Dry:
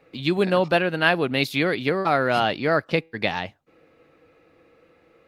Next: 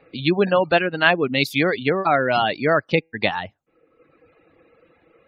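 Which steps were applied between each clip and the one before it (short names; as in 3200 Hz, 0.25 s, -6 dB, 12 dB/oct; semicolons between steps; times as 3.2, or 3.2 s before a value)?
spectral gate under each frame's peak -30 dB strong; reverb removal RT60 1 s; gain +3.5 dB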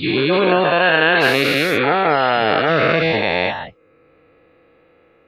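spectral dilation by 0.48 s; gain -4.5 dB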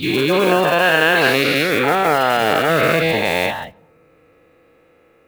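block floating point 5-bit; on a send at -22.5 dB: reverb RT60 1.1 s, pre-delay 4 ms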